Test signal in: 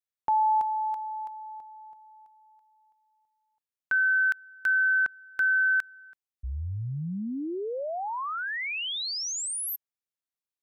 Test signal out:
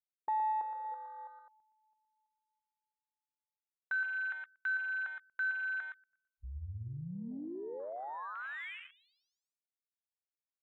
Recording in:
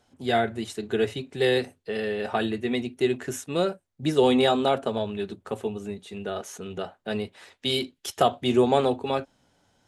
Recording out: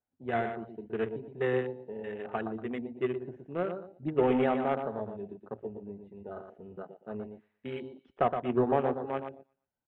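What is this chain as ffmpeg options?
-filter_complex "[0:a]aeval=exprs='0.447*(cos(1*acos(clip(val(0)/0.447,-1,1)))-cos(1*PI/2))+0.00891*(cos(3*acos(clip(val(0)/0.447,-1,1)))-cos(3*PI/2))+0.0251*(cos(7*acos(clip(val(0)/0.447,-1,1)))-cos(7*PI/2))':c=same,lowpass=f=2.5k:w=0.5412,lowpass=f=2.5k:w=1.3066,asplit=2[a][b];[b]aecho=0:1:118|236|354|472:0.447|0.138|0.0429|0.0133[c];[a][c]amix=inputs=2:normalize=0,afwtdn=0.0141,volume=-5.5dB"

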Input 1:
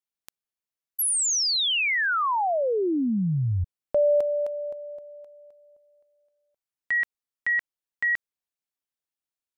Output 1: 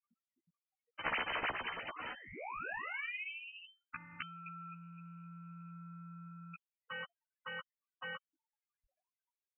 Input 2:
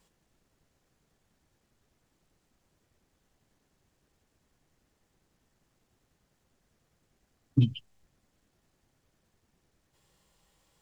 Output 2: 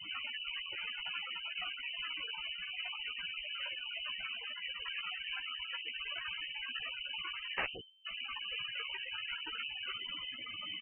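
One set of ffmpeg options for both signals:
-filter_complex "[0:a]aeval=exprs='val(0)+0.5*0.0282*sgn(val(0))':c=same,aemphasis=mode=production:type=50kf,aeval=exprs='(mod(7.94*val(0)+1,2)-1)/7.94':c=same,afftfilt=real='re*gte(hypot(re,im),0.0282)':imag='im*gte(hypot(re,im),0.0282)':win_size=1024:overlap=0.75,equalizer=f=270:w=1.2:g=-12.5,alimiter=level_in=1dB:limit=-24dB:level=0:latency=1:release=21,volume=-1dB,crystalizer=i=0.5:c=0,afftfilt=real='re*lt(hypot(re,im),0.0501)':imag='im*lt(hypot(re,im),0.0501)':win_size=1024:overlap=0.75,asplit=2[a][b];[b]adelay=14,volume=-2.5dB[c];[a][c]amix=inputs=2:normalize=0,lowpass=f=2.6k:t=q:w=0.5098,lowpass=f=2.6k:t=q:w=0.6013,lowpass=f=2.6k:t=q:w=0.9,lowpass=f=2.6k:t=q:w=2.563,afreqshift=-3100,volume=4.5dB"

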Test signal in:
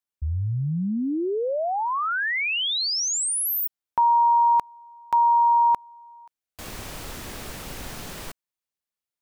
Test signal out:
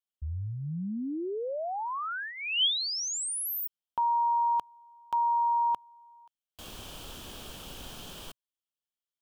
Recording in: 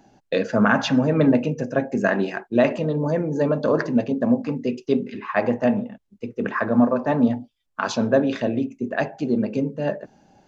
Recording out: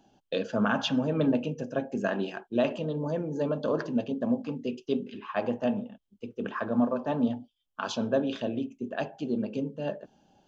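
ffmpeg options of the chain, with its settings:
-af "equalizer=f=125:t=o:w=0.33:g=-3,equalizer=f=2k:t=o:w=0.33:g=-11,equalizer=f=3.15k:t=o:w=0.33:g=11,volume=-8dB"

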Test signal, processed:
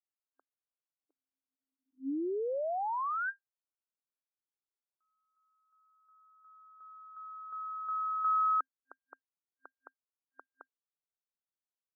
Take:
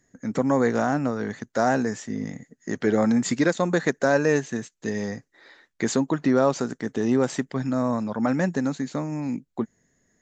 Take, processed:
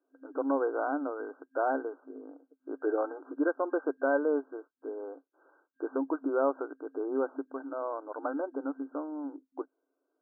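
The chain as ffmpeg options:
-af "afftfilt=real='re*between(b*sr/4096,260,1600)':imag='im*between(b*sr/4096,260,1600)':win_size=4096:overlap=0.75,volume=-6.5dB"

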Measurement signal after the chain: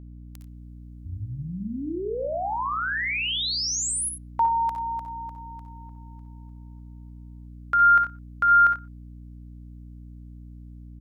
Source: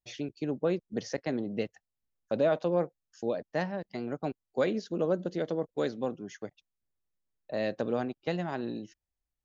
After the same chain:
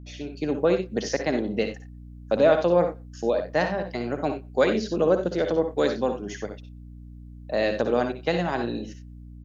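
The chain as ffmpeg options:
-filter_complex "[0:a]lowshelf=f=240:g=-8.5,asplit=2[a][b];[b]adelay=120,highpass=300,lowpass=3.4k,asoftclip=type=hard:threshold=-25dB,volume=-28dB[c];[a][c]amix=inputs=2:normalize=0,dynaudnorm=f=120:g=5:m=9dB,asplit=2[d][e];[e]aecho=0:1:58|68|90:0.335|0.282|0.2[f];[d][f]amix=inputs=2:normalize=0,aeval=exprs='val(0)+0.00891*(sin(2*PI*60*n/s)+sin(2*PI*2*60*n/s)/2+sin(2*PI*3*60*n/s)/3+sin(2*PI*4*60*n/s)/4+sin(2*PI*5*60*n/s)/5)':c=same"

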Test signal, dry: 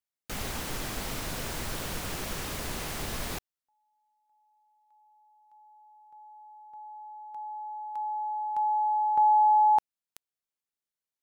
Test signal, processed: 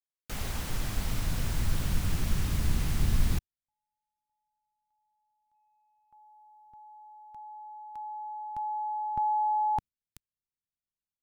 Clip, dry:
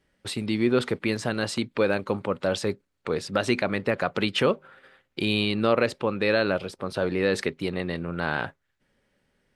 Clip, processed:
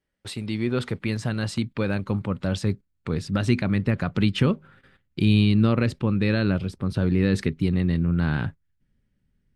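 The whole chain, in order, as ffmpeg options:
-af "agate=range=-9dB:threshold=-56dB:ratio=16:release=50:detection=rms,asubboost=boost=10.5:cutoff=180,volume=-3dB"

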